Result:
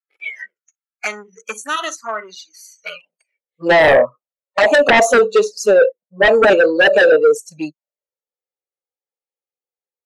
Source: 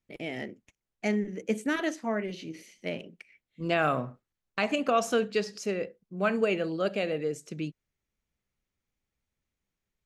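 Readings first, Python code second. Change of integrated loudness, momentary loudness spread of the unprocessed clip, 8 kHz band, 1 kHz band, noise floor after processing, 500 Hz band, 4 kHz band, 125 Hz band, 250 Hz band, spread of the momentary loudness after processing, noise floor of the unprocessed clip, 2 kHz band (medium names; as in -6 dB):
+17.5 dB, 13 LU, +15.0 dB, +14.0 dB, under -85 dBFS, +17.0 dB, +14.5 dB, +2.0 dB, +5.5 dB, 19 LU, under -85 dBFS, +18.5 dB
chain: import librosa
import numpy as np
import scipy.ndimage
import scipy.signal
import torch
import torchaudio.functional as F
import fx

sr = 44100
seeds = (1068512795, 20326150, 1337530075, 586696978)

p1 = fx.noise_reduce_blind(x, sr, reduce_db=28)
p2 = fx.peak_eq(p1, sr, hz=2800.0, db=-6.0, octaves=2.4)
p3 = fx.env_flanger(p2, sr, rest_ms=2.4, full_db=-28.5)
p4 = 10.0 ** (-26.5 / 20.0) * np.tanh(p3 / 10.0 ** (-26.5 / 20.0))
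p5 = p3 + F.gain(torch.from_numpy(p4), -6.0).numpy()
p6 = fx.filter_sweep_highpass(p5, sr, from_hz=1400.0, to_hz=560.0, start_s=2.88, end_s=3.39, q=4.4)
y = fx.fold_sine(p6, sr, drive_db=13, ceiling_db=-6.5)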